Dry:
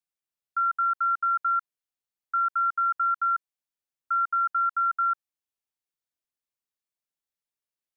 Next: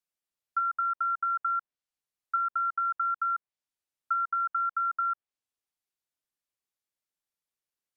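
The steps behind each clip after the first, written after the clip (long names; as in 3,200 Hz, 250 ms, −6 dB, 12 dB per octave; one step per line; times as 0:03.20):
treble cut that deepens with the level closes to 1,200 Hz, closed at −23.5 dBFS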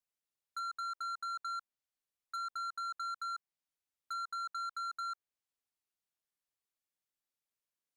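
soft clipping −33.5 dBFS, distortion −11 dB
level −3.5 dB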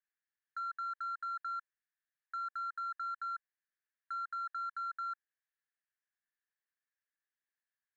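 resonant band-pass 1,700 Hz, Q 7.8
level +11.5 dB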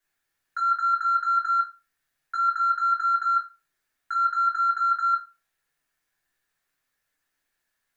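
rectangular room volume 160 cubic metres, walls furnished, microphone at 3.3 metres
level +9 dB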